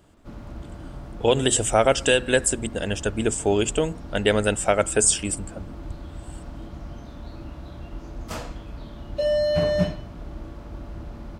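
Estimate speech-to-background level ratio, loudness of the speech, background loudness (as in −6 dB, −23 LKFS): 10.5 dB, −22.0 LKFS, −32.5 LKFS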